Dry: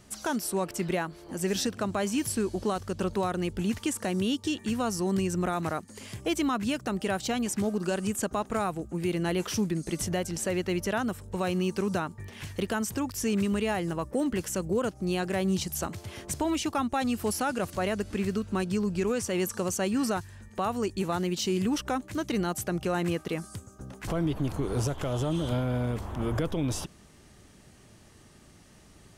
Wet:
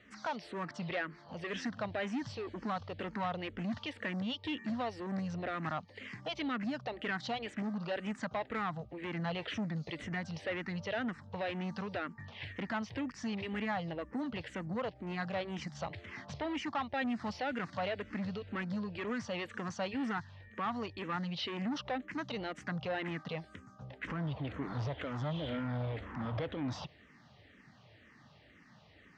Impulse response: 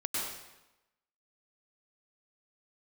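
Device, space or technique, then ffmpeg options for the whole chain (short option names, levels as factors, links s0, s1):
barber-pole phaser into a guitar amplifier: -filter_complex "[0:a]asplit=2[s0][s1];[s1]afreqshift=-2[s2];[s0][s2]amix=inputs=2:normalize=1,asoftclip=type=tanh:threshold=0.0355,highpass=110,equalizer=f=190:t=q:w=4:g=-3,equalizer=f=370:t=q:w=4:g=-10,equalizer=f=1900:t=q:w=4:g=7,lowpass=f=4200:w=0.5412,lowpass=f=4200:w=1.3066"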